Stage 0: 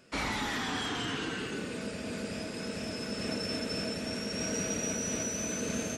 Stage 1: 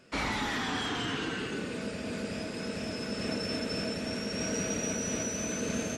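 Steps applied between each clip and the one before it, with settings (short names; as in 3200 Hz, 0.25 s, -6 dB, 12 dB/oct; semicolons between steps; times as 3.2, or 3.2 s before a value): high shelf 8000 Hz -6.5 dB; gain +1.5 dB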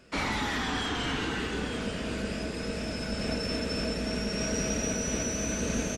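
octaver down 2 oct, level -4 dB; echo 0.884 s -9 dB; gain +1.5 dB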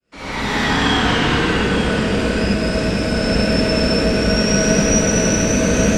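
opening faded in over 0.58 s; reverb RT60 2.1 s, pre-delay 58 ms, DRR -9 dB; gain +5 dB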